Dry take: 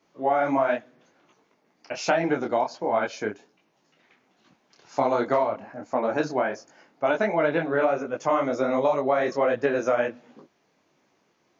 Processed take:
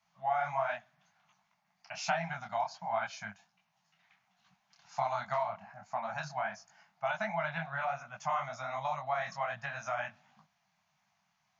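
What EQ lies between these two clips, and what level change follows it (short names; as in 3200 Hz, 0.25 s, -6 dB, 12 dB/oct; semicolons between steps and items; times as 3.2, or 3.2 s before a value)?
elliptic band-stop 190–710 Hz, stop band 40 dB; -6.0 dB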